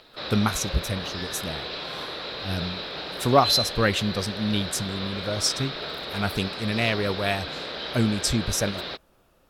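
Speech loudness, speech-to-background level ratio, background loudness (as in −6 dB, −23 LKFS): −26.5 LKFS, 4.5 dB, −31.0 LKFS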